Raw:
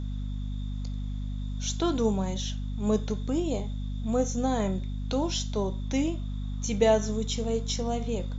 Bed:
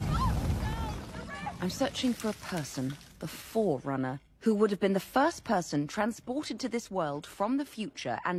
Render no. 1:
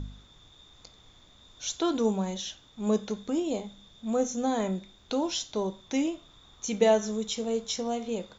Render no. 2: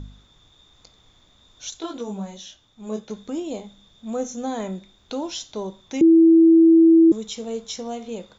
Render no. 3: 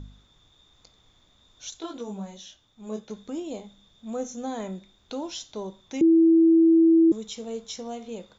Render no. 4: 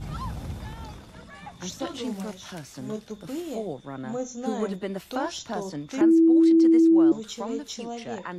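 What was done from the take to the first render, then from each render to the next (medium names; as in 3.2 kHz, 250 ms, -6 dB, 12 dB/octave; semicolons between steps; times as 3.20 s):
de-hum 50 Hz, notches 5
1.70–3.10 s: detune thickener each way 17 cents; 6.01–7.12 s: bleep 328 Hz -9 dBFS
trim -4.5 dB
add bed -4.5 dB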